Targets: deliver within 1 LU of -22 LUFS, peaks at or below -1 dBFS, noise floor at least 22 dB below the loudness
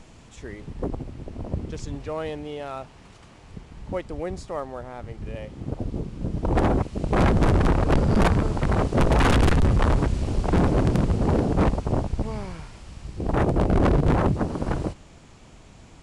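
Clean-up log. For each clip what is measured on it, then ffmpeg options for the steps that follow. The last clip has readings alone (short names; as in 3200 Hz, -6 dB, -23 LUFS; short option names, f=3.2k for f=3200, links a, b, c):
loudness -24.0 LUFS; peak -14.5 dBFS; loudness target -22.0 LUFS
-> -af "volume=2dB"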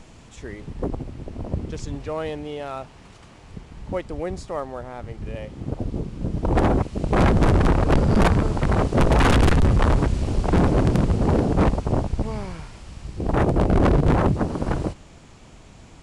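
loudness -22.0 LUFS; peak -12.5 dBFS; noise floor -47 dBFS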